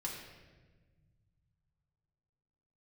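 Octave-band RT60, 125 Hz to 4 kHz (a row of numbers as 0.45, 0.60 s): 3.6, 2.5, 1.6, 1.1, 1.2, 1.0 s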